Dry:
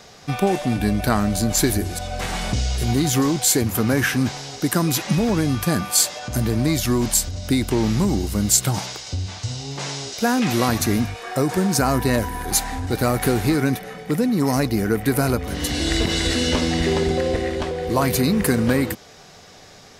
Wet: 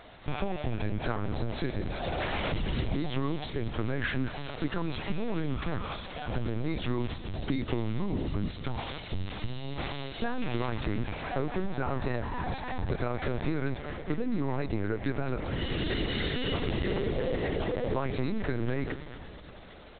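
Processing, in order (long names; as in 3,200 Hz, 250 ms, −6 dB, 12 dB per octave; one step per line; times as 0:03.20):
downward compressor 10 to 1, threshold −22 dBFS, peak gain reduction 11 dB
on a send: echo with shifted repeats 219 ms, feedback 63%, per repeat −120 Hz, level −13 dB
on the sum: linear-prediction vocoder at 8 kHz pitch kept
level −4 dB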